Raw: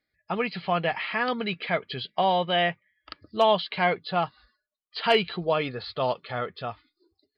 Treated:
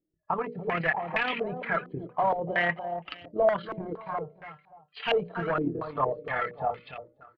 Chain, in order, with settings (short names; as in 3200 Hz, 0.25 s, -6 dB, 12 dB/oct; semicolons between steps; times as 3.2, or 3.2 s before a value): flange 1.1 Hz, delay 5.8 ms, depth 1.3 ms, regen +26%; in parallel at -3 dB: compressor, threshold -40 dBFS, peak gain reduction 19.5 dB; on the sum: AM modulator 36 Hz, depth 40%; hard clip -27.5 dBFS, distortion -8 dB; notches 60/120/180/240/300/360/420/480/540/600 Hz; 3.93–5.07 resonator 150 Hz, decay 0.3 s, harmonics odd, mix 70%; on a send: feedback echo 0.289 s, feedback 22%, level -9 dB; on the sum: stepped low-pass 4.3 Hz 340–2600 Hz; gain +1.5 dB